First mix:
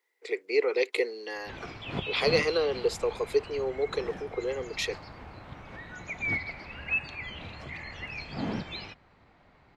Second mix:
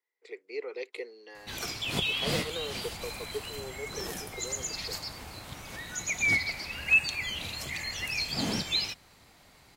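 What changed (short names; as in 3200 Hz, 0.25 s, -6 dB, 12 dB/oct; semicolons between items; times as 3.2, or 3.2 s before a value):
speech -11.5 dB; background: remove LPF 1900 Hz 12 dB/oct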